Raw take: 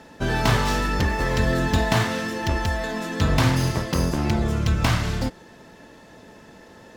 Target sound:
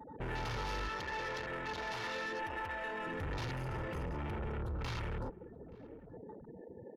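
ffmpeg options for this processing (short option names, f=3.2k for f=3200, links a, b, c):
-filter_complex "[0:a]volume=25dB,asoftclip=hard,volume=-25dB,asettb=1/sr,asplit=3[a][b][c];[a]atrim=end=0.884[d];[b]atrim=start=0.88:end=3.07,asetpts=PTS-STARTPTS,afade=t=in:d=0.004:c=qsin,afade=t=out:st=2.186:d=0.004:c=qsin,highpass=f=530:p=1[e];[c]atrim=start=3.066[f];[d][e]acrossfade=d=0.004:c1=hsin:c2=qsin[g];[g][f]acrossfade=d=0.004:c1=qsin:c2=hsin,afftfilt=real='re*gte(hypot(re,im),0.0158)':imag='im*gte(hypot(re,im),0.0158)':win_size=1024:overlap=0.75,asoftclip=type=tanh:threshold=-35dB,acompressor=threshold=-39dB:ratio=5,aecho=1:1:2.2:0.42,afwtdn=0.00398,equalizer=f=11k:t=o:w=0.44:g=9.5,asplit=2[h][i];[i]adelay=874.6,volume=-21dB,highshelf=f=4k:g=-19.7[j];[h][j]amix=inputs=2:normalize=0"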